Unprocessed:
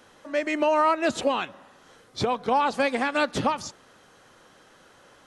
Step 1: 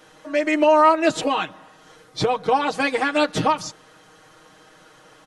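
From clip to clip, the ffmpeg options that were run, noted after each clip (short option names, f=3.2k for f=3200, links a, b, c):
-af "aecho=1:1:6.4:0.89,volume=2dB"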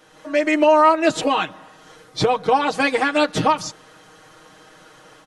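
-af "dynaudnorm=f=100:g=3:m=5dB,volume=-2dB"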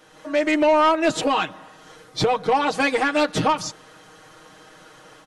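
-af "asoftclip=type=tanh:threshold=-11.5dB"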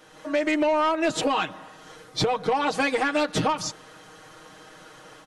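-af "acompressor=threshold=-20dB:ratio=6"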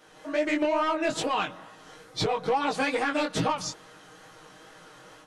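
-af "flanger=delay=16.5:depth=6.5:speed=2.3"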